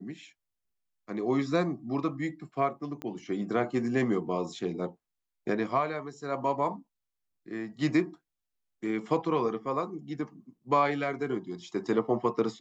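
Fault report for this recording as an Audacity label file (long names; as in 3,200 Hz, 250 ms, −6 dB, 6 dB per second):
3.020000	3.020000	click −24 dBFS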